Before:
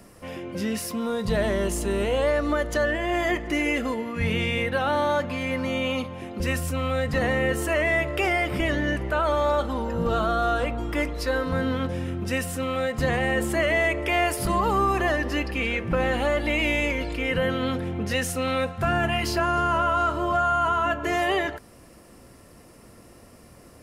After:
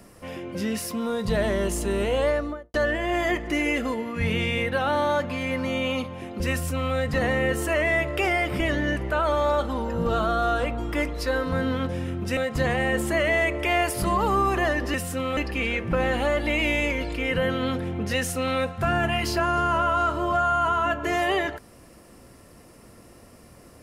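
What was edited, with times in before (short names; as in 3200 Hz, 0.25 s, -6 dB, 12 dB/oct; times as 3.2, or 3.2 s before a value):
2.25–2.74 studio fade out
12.37–12.8 move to 15.37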